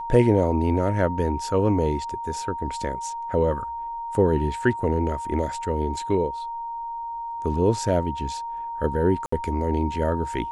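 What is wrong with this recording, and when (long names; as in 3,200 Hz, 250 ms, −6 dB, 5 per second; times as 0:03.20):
whistle 930 Hz −29 dBFS
0:09.26–0:09.32: drop-out 64 ms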